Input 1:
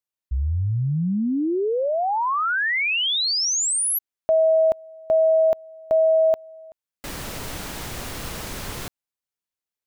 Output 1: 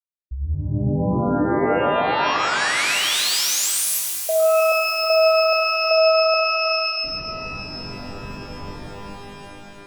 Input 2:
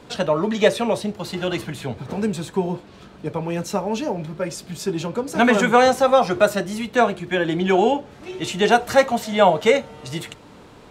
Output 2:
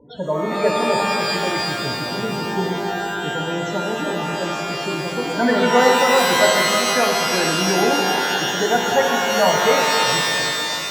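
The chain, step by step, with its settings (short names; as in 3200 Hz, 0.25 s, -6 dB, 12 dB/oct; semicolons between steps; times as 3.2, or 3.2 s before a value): loudest bins only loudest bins 16; darkening echo 0.317 s, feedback 60%, low-pass 2200 Hz, level -11.5 dB; shimmer reverb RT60 2.8 s, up +12 st, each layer -2 dB, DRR 1 dB; gain -3.5 dB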